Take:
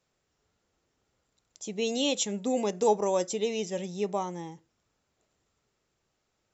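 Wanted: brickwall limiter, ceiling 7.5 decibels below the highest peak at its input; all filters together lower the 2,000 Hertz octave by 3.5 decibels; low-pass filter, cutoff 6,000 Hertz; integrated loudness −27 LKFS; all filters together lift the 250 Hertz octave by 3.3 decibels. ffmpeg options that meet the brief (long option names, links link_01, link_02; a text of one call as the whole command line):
ffmpeg -i in.wav -af "lowpass=6000,equalizer=frequency=250:width_type=o:gain=4,equalizer=frequency=2000:width_type=o:gain=-5,volume=3.5dB,alimiter=limit=-16dB:level=0:latency=1" out.wav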